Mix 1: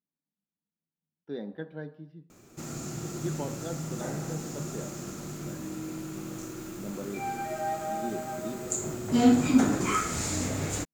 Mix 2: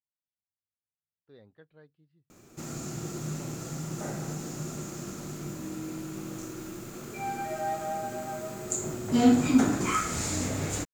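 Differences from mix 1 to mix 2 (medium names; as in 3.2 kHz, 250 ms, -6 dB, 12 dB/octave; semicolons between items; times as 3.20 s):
speech -9.0 dB; reverb: off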